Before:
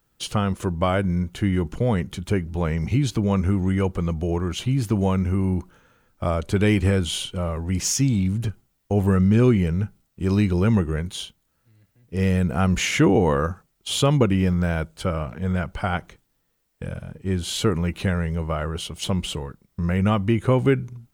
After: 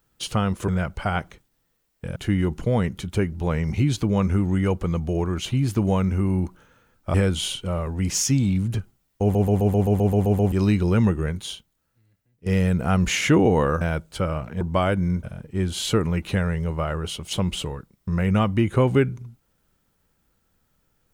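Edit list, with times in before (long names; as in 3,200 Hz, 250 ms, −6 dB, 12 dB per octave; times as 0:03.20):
0:00.68–0:01.30: swap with 0:15.46–0:16.94
0:06.28–0:06.84: remove
0:08.92: stutter in place 0.13 s, 10 plays
0:11.00–0:12.16: fade out, to −13.5 dB
0:13.51–0:14.66: remove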